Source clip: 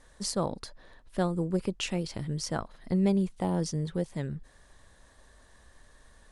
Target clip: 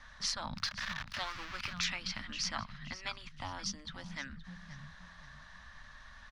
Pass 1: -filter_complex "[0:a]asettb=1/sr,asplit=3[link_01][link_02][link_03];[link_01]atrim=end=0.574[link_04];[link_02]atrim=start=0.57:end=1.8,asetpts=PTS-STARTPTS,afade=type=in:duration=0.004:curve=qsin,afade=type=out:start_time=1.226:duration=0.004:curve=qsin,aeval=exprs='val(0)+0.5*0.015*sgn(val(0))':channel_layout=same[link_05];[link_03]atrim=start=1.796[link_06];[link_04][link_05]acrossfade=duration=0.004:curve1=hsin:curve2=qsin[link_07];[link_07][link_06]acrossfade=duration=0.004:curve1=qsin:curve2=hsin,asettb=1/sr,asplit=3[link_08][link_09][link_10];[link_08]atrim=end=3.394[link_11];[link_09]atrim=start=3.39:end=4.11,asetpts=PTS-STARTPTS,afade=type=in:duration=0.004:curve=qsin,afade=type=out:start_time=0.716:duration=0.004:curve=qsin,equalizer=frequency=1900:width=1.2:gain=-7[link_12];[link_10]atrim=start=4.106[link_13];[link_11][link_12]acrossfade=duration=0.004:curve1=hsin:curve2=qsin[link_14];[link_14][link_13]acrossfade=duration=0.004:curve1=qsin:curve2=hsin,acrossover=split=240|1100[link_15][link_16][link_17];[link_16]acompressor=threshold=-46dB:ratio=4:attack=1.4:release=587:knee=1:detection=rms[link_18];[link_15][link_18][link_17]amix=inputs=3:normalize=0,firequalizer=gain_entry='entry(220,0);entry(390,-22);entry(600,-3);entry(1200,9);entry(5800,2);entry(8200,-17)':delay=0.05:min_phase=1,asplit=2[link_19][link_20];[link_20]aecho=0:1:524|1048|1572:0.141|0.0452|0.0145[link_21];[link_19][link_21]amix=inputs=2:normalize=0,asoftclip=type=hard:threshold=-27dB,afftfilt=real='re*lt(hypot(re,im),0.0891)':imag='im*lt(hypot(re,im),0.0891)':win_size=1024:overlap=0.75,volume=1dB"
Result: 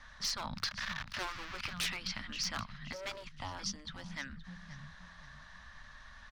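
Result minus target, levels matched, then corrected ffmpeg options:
hard clipping: distortion +33 dB
-filter_complex "[0:a]asettb=1/sr,asplit=3[link_01][link_02][link_03];[link_01]atrim=end=0.574[link_04];[link_02]atrim=start=0.57:end=1.8,asetpts=PTS-STARTPTS,afade=type=in:duration=0.004:curve=qsin,afade=type=out:start_time=1.226:duration=0.004:curve=qsin,aeval=exprs='val(0)+0.5*0.015*sgn(val(0))':channel_layout=same[link_05];[link_03]atrim=start=1.796[link_06];[link_04][link_05]acrossfade=duration=0.004:curve1=hsin:curve2=qsin[link_07];[link_07][link_06]acrossfade=duration=0.004:curve1=qsin:curve2=hsin,asettb=1/sr,asplit=3[link_08][link_09][link_10];[link_08]atrim=end=3.394[link_11];[link_09]atrim=start=3.39:end=4.11,asetpts=PTS-STARTPTS,afade=type=in:duration=0.004:curve=qsin,afade=type=out:start_time=0.716:duration=0.004:curve=qsin,equalizer=frequency=1900:width=1.2:gain=-7[link_12];[link_10]atrim=start=4.106[link_13];[link_11][link_12]acrossfade=duration=0.004:curve1=hsin:curve2=qsin[link_14];[link_14][link_13]acrossfade=duration=0.004:curve1=qsin:curve2=hsin,acrossover=split=240|1100[link_15][link_16][link_17];[link_16]acompressor=threshold=-46dB:ratio=4:attack=1.4:release=587:knee=1:detection=rms[link_18];[link_15][link_18][link_17]amix=inputs=3:normalize=0,firequalizer=gain_entry='entry(220,0);entry(390,-22);entry(600,-3);entry(1200,9);entry(5800,2);entry(8200,-17)':delay=0.05:min_phase=1,asplit=2[link_19][link_20];[link_20]aecho=0:1:524|1048|1572:0.141|0.0452|0.0145[link_21];[link_19][link_21]amix=inputs=2:normalize=0,asoftclip=type=hard:threshold=-17dB,afftfilt=real='re*lt(hypot(re,im),0.0891)':imag='im*lt(hypot(re,im),0.0891)':win_size=1024:overlap=0.75,volume=1dB"

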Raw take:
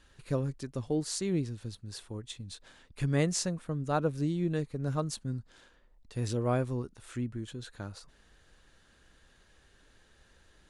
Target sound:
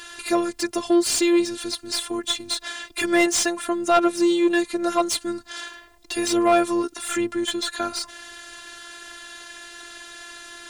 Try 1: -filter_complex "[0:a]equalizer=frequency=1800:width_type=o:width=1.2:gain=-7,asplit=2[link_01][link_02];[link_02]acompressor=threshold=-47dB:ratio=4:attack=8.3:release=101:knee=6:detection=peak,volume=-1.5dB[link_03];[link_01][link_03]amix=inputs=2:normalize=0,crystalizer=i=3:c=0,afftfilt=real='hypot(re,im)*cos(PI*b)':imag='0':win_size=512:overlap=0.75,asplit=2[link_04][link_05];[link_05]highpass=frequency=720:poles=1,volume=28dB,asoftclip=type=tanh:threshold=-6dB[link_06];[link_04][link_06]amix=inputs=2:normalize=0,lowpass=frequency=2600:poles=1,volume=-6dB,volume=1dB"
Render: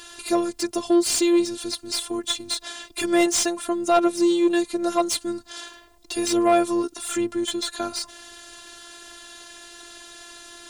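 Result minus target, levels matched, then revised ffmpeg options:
2,000 Hz band −4.5 dB
-filter_complex "[0:a]asplit=2[link_01][link_02];[link_02]acompressor=threshold=-47dB:ratio=4:attack=8.3:release=101:knee=6:detection=peak,volume=-1.5dB[link_03];[link_01][link_03]amix=inputs=2:normalize=0,crystalizer=i=3:c=0,afftfilt=real='hypot(re,im)*cos(PI*b)':imag='0':win_size=512:overlap=0.75,asplit=2[link_04][link_05];[link_05]highpass=frequency=720:poles=1,volume=28dB,asoftclip=type=tanh:threshold=-6dB[link_06];[link_04][link_06]amix=inputs=2:normalize=0,lowpass=frequency=2600:poles=1,volume=-6dB,volume=1dB"

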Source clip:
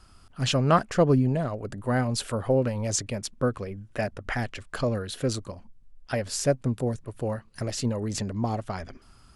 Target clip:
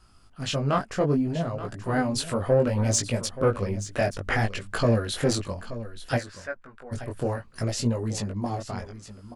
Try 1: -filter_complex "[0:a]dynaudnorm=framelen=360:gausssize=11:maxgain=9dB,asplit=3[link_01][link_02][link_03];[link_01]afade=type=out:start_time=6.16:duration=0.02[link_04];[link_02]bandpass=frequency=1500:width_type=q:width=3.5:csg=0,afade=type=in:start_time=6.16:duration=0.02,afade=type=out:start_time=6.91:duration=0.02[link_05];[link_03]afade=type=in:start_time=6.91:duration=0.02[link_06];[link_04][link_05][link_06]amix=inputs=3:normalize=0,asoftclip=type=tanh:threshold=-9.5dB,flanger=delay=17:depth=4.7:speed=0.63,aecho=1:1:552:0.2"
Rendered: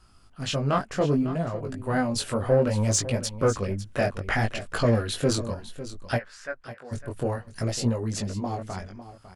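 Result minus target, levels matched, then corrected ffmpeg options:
echo 326 ms early
-filter_complex "[0:a]dynaudnorm=framelen=360:gausssize=11:maxgain=9dB,asplit=3[link_01][link_02][link_03];[link_01]afade=type=out:start_time=6.16:duration=0.02[link_04];[link_02]bandpass=frequency=1500:width_type=q:width=3.5:csg=0,afade=type=in:start_time=6.16:duration=0.02,afade=type=out:start_time=6.91:duration=0.02[link_05];[link_03]afade=type=in:start_time=6.91:duration=0.02[link_06];[link_04][link_05][link_06]amix=inputs=3:normalize=0,asoftclip=type=tanh:threshold=-9.5dB,flanger=delay=17:depth=4.7:speed=0.63,aecho=1:1:878:0.2"

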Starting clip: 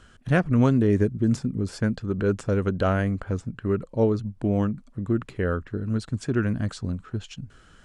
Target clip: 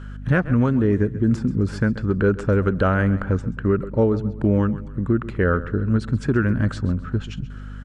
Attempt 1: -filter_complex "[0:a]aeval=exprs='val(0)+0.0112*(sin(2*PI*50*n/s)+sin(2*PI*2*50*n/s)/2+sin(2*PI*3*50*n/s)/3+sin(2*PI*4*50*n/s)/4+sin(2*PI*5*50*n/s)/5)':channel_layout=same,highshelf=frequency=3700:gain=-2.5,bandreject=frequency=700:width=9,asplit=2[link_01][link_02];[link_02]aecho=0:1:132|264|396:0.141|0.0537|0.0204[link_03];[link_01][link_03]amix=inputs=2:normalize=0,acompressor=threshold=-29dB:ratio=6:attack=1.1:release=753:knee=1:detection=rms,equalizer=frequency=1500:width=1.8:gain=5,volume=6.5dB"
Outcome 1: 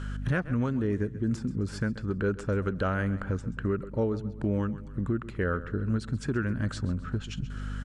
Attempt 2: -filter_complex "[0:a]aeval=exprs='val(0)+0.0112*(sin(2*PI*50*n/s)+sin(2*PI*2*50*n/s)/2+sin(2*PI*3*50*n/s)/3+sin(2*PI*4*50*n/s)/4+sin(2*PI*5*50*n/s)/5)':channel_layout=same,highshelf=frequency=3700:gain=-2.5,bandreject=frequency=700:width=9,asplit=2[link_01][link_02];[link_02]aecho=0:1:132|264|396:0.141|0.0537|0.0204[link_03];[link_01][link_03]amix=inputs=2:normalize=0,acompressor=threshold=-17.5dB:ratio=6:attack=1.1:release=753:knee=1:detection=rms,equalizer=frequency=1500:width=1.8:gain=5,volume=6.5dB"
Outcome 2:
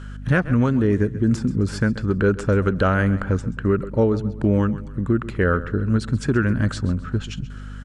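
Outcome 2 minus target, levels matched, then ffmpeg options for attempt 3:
8,000 Hz band +7.5 dB
-filter_complex "[0:a]aeval=exprs='val(0)+0.0112*(sin(2*PI*50*n/s)+sin(2*PI*2*50*n/s)/2+sin(2*PI*3*50*n/s)/3+sin(2*PI*4*50*n/s)/4+sin(2*PI*5*50*n/s)/5)':channel_layout=same,highshelf=frequency=3700:gain=-12,bandreject=frequency=700:width=9,asplit=2[link_01][link_02];[link_02]aecho=0:1:132|264|396:0.141|0.0537|0.0204[link_03];[link_01][link_03]amix=inputs=2:normalize=0,acompressor=threshold=-17.5dB:ratio=6:attack=1.1:release=753:knee=1:detection=rms,equalizer=frequency=1500:width=1.8:gain=5,volume=6.5dB"

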